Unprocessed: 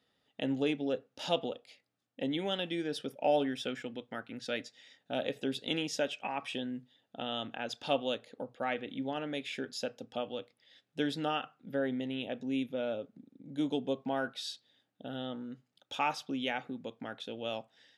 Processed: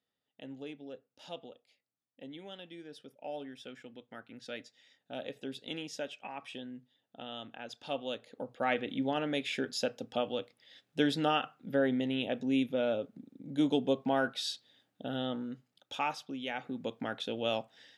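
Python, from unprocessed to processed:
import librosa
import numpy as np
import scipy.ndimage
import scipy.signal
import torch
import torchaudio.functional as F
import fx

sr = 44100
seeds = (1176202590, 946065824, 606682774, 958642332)

y = fx.gain(x, sr, db=fx.line((3.31, -13.0), (4.27, -6.5), (7.88, -6.5), (8.73, 4.0), (15.37, 4.0), (16.42, -5.0), (16.87, 5.0)))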